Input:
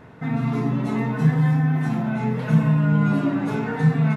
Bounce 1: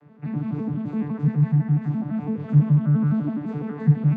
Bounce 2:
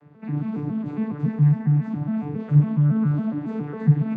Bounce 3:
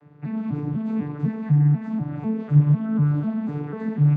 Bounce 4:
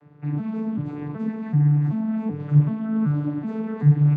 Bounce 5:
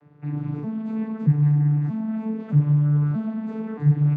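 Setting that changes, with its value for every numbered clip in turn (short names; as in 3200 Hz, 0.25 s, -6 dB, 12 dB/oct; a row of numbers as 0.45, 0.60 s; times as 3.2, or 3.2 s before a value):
arpeggiated vocoder, a note every: 84, 138, 248, 381, 628 ms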